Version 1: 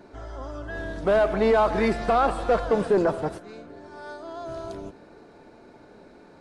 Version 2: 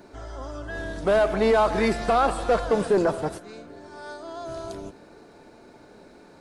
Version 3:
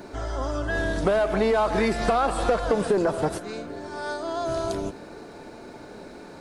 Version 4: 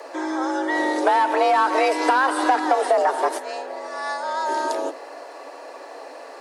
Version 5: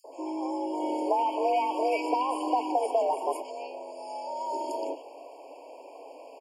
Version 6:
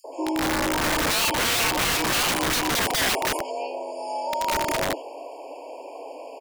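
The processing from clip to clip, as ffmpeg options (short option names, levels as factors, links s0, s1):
-af "highshelf=f=5000:g=9.5"
-af "acompressor=threshold=0.0447:ratio=6,volume=2.37"
-af "afreqshift=260,volume=1.5"
-filter_complex "[0:a]acrossover=split=1300|5000[s0][s1][s2];[s0]adelay=40[s3];[s1]adelay=120[s4];[s3][s4][s2]amix=inputs=3:normalize=0,afftfilt=real='re*eq(mod(floor(b*sr/1024/1100),2),0)':imag='im*eq(mod(floor(b*sr/1024/1100),2),0)':win_size=1024:overlap=0.75,volume=0.473"
-af "aeval=exprs='(mod(20*val(0)+1,2)-1)/20':c=same,volume=2.51"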